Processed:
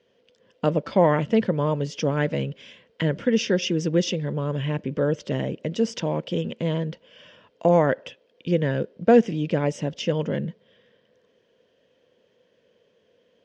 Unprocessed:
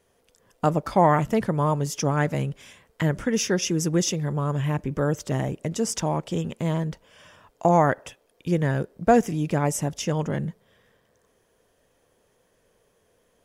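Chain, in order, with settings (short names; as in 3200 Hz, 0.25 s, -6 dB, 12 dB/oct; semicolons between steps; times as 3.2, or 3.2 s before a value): speaker cabinet 130–5000 Hz, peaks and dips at 220 Hz +4 dB, 510 Hz +7 dB, 790 Hz -8 dB, 1200 Hz -7 dB, 3000 Hz +7 dB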